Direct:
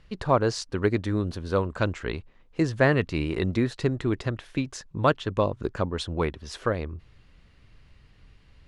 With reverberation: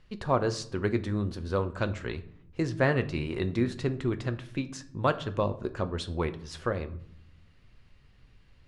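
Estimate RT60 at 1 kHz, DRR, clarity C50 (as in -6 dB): 0.65 s, 9.0 dB, 16.0 dB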